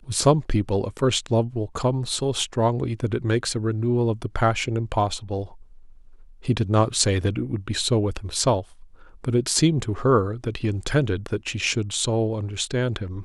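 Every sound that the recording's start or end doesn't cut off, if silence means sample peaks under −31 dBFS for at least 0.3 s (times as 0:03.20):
0:06.45–0:08.61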